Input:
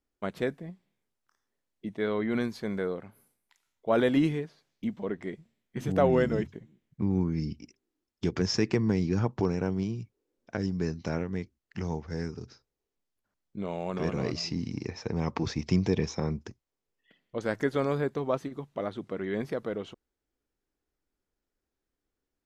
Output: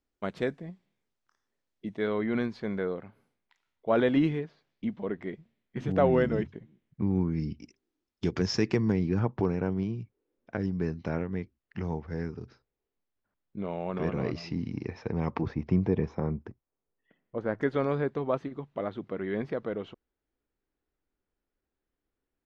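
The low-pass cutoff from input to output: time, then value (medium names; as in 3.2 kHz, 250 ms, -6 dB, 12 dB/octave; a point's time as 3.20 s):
6.6 kHz
from 2.07 s 3.6 kHz
from 7.60 s 5.9 kHz
from 8.92 s 2.8 kHz
from 15.41 s 1.5 kHz
from 17.61 s 3.1 kHz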